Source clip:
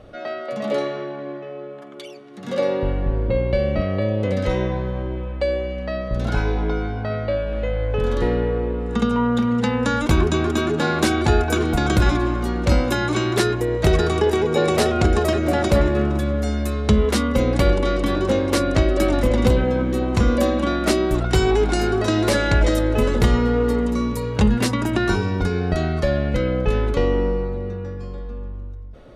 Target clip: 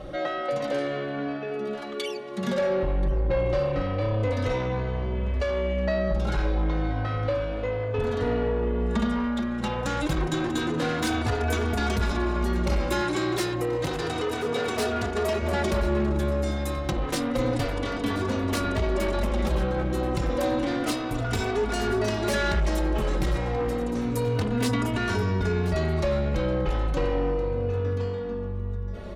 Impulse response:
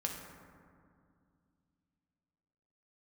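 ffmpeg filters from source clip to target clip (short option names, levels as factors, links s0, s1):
-filter_complex "[0:a]asoftclip=type=tanh:threshold=0.0944,aecho=1:1:1031:0.158,acompressor=threshold=0.0316:ratio=6,asettb=1/sr,asplit=3[s0][s1][s2];[s0]atrim=end=13.014[s3];[s1]atrim=start=13.01:end=15.42,asetpts=PTS-STARTPTS,afade=t=in:d=0.004:c=qsin,afade=t=out:st=2.406:d=0.004:c=qsin,highpass=f=160:p=1[s4];[s2]atrim=start=15.416[s5];[s3][s4]acrossfade=d=0.004:c1=hsin:c2=qsin[s6];[s6][s5]acrossfade=d=0.004:c1=qsin:c2=hsin,asplit=2[s7][s8];[s8]adelay=3.3,afreqshift=-0.3[s9];[s7][s9]amix=inputs=2:normalize=1,volume=2.82"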